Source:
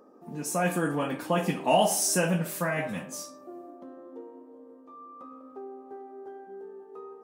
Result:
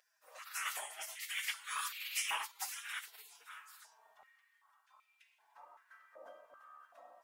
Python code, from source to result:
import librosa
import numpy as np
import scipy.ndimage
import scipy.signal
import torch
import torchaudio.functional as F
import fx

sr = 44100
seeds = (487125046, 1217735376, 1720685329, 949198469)

y = x + 0.7 * np.pad(x, (int(5.4 * sr / 1000.0), 0))[:len(x)]
y = y + 10.0 ** (-12.5 / 20.0) * np.pad(y, (int(566 * sr / 1000.0), 0))[:len(y)]
y = fx.spec_gate(y, sr, threshold_db=-30, keep='weak')
y = fx.filter_held_highpass(y, sr, hz=2.6, low_hz=550.0, high_hz=2500.0)
y = y * 10.0 ** (2.0 / 20.0)